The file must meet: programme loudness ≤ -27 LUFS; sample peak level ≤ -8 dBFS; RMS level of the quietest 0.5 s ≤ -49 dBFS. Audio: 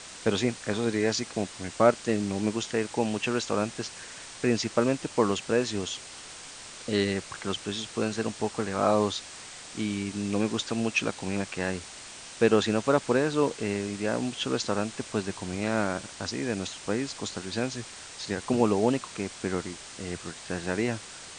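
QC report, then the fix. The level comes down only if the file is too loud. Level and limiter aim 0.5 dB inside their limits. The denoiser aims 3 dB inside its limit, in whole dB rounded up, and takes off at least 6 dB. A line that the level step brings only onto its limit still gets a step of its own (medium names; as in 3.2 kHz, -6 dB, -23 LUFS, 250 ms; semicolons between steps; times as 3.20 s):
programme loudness -29.0 LUFS: pass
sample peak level -5.5 dBFS: fail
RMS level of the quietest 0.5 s -44 dBFS: fail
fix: noise reduction 8 dB, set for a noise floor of -44 dBFS; peak limiter -8.5 dBFS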